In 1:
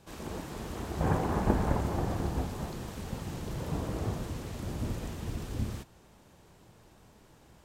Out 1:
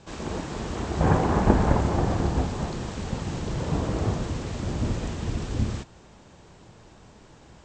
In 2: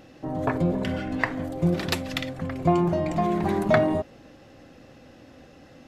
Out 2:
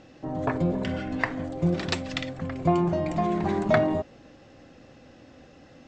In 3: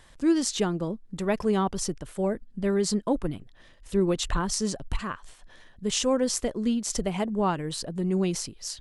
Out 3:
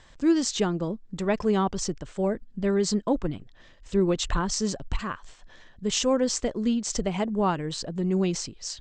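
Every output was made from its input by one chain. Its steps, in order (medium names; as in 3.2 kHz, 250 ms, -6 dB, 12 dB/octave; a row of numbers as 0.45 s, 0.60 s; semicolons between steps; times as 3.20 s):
steep low-pass 8 kHz 72 dB/octave; normalise loudness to -27 LUFS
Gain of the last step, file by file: +7.5 dB, -1.5 dB, +1.0 dB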